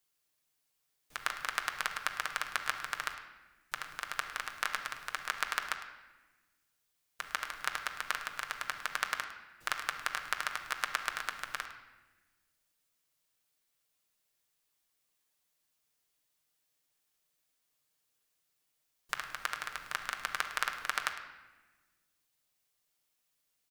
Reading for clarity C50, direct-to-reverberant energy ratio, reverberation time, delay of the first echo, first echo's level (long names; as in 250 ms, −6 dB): 7.5 dB, 1.5 dB, 1.2 s, 106 ms, −14.5 dB